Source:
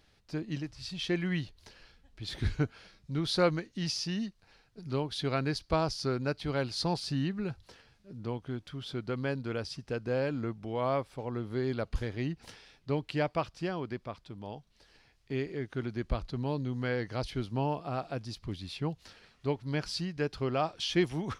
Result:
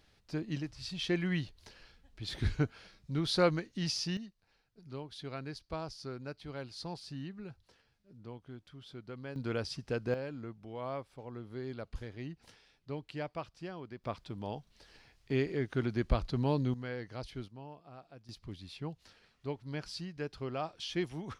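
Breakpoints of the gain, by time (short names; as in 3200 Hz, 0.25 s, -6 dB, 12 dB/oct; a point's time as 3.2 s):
-1 dB
from 4.17 s -11 dB
from 9.36 s 0 dB
from 10.14 s -9 dB
from 14.04 s +2.5 dB
from 16.74 s -8 dB
from 17.48 s -17.5 dB
from 18.29 s -7 dB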